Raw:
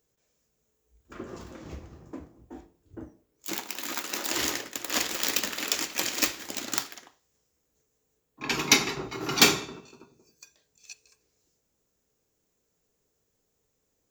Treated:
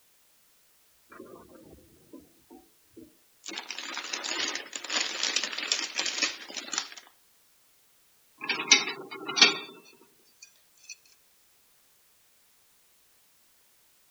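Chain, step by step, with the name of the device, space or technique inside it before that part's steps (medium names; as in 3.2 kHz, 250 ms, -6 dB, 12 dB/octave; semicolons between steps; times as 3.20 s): low-pass 4.8 kHz 12 dB/octave; spectral gate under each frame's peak -15 dB strong; turntable without a phono preamp (RIAA curve recording; white noise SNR 29 dB); 8.47–9.92 s: high-pass 150 Hz 24 dB/octave; trim -2 dB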